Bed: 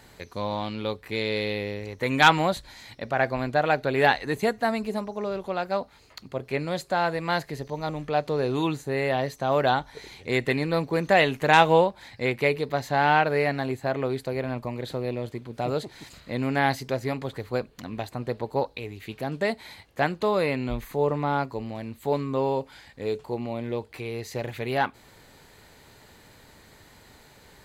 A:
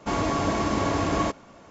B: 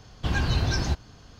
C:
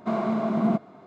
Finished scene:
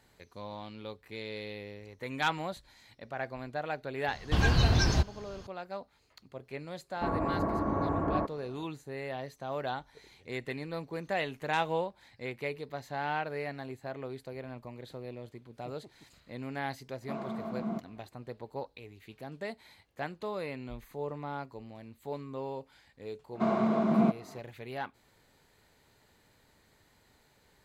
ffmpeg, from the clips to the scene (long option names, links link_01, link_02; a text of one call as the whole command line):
ffmpeg -i bed.wav -i cue0.wav -i cue1.wav -i cue2.wav -filter_complex "[3:a]asplit=2[link_01][link_02];[0:a]volume=-13dB[link_03];[1:a]lowpass=frequency=1400:width=0.5412,lowpass=frequency=1400:width=1.3066[link_04];[2:a]atrim=end=1.39,asetpts=PTS-STARTPTS,afade=type=in:duration=0.004:curve=hsin,afade=type=out:start_time=1.386:duration=0.004:curve=hsin,adelay=4080[link_05];[link_04]atrim=end=1.7,asetpts=PTS-STARTPTS,volume=-5.5dB,afade=type=in:duration=0.004:curve=hsin,afade=type=out:start_time=1.696:duration=0.004:curve=hsin,adelay=6950[link_06];[link_01]atrim=end=1.06,asetpts=PTS-STARTPTS,volume=-12.5dB,afade=type=in:duration=0.004:curve=hsin,afade=type=out:start_time=1.056:duration=0.004:curve=hsin,adelay=17020[link_07];[link_02]atrim=end=1.06,asetpts=PTS-STARTPTS,volume=-2dB,afade=type=in:duration=0.004:curve=hsin,afade=type=out:start_time=1.056:duration=0.004:curve=hsin,adelay=23340[link_08];[link_03][link_05][link_06][link_07][link_08]amix=inputs=5:normalize=0" out.wav